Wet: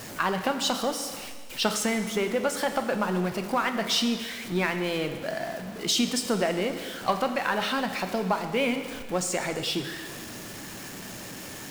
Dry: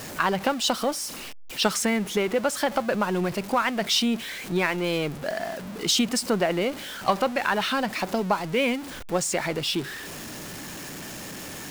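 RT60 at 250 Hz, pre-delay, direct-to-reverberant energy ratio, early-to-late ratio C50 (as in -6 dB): 1.8 s, 5 ms, 6.5 dB, 8.5 dB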